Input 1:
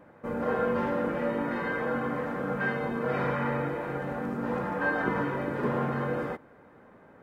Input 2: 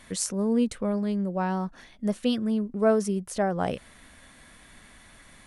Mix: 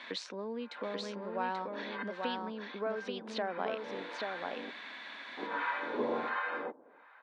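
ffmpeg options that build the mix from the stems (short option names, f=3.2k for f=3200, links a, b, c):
-filter_complex "[0:a]acrossover=split=810[a][b];[a]aeval=exprs='val(0)*(1-1/2+1/2*cos(2*PI*1.4*n/s))':c=same[c];[b]aeval=exprs='val(0)*(1-1/2-1/2*cos(2*PI*1.4*n/s))':c=same[d];[c][d]amix=inputs=2:normalize=0,adelay=350,volume=0dB,asplit=3[e][f][g];[e]atrim=end=4.71,asetpts=PTS-STARTPTS,afade=t=out:st=4.706:d=0.004:c=hsin[h];[f]atrim=start=4.71:end=5.37,asetpts=PTS-STARTPTS,volume=0[i];[g]atrim=start=5.37,asetpts=PTS-STARTPTS,afade=t=in:d=0.004:c=hsin[j];[h][i][j]concat=n=3:v=0:a=1[k];[1:a]acompressor=threshold=-35dB:ratio=8,volume=2.5dB,asplit=3[l][m][n];[m]volume=-3.5dB[o];[n]apad=whole_len=334246[p];[k][p]sidechaincompress=threshold=-53dB:ratio=6:attack=10:release=243[q];[o]aecho=0:1:834:1[r];[q][l][r]amix=inputs=3:normalize=0,highpass=f=280:w=0.5412,highpass=f=280:w=1.3066,equalizer=f=370:t=q:w=4:g=-3,equalizer=f=970:t=q:w=4:g=6,equalizer=f=1.6k:t=q:w=4:g=5,equalizer=f=2.4k:t=q:w=4:g=6,equalizer=f=3.8k:t=q:w=4:g=8,lowpass=f=4.4k:w=0.5412,lowpass=f=4.4k:w=1.3066"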